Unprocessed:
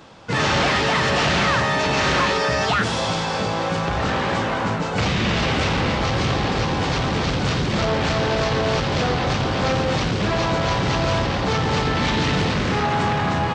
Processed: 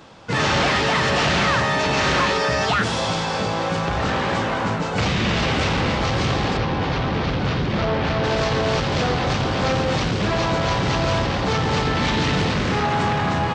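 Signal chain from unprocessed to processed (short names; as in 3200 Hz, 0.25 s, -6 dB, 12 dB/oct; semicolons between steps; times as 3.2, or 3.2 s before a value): 6.57–8.24 air absorption 160 m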